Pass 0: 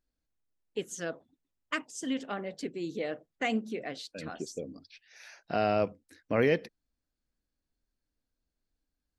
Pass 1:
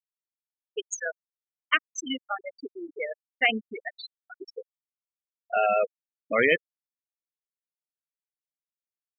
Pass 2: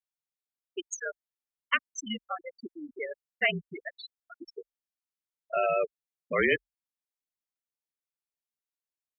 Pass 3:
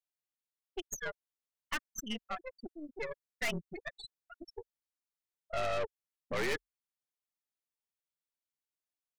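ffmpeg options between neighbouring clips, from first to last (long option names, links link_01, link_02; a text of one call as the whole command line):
ffmpeg -i in.wav -af "tiltshelf=frequency=720:gain=-8.5,afftfilt=real='re*gte(hypot(re,im),0.0891)':imag='im*gte(hypot(re,im),0.0891)':win_size=1024:overlap=0.75,volume=5.5dB" out.wav
ffmpeg -i in.wav -af "afreqshift=-46,volume=-3.5dB" out.wav
ffmpeg -i in.wav -af "aeval=exprs='(tanh(39.8*val(0)+0.8)-tanh(0.8))/39.8':channel_layout=same,volume=1dB" out.wav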